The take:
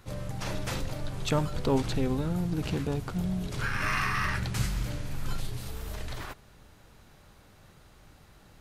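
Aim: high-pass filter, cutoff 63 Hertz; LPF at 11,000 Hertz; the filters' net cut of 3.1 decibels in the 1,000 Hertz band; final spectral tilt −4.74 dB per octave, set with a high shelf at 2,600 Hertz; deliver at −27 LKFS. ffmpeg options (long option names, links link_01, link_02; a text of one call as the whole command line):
ffmpeg -i in.wav -af "highpass=63,lowpass=11000,equalizer=frequency=1000:width_type=o:gain=-5,highshelf=frequency=2600:gain=5,volume=5dB" out.wav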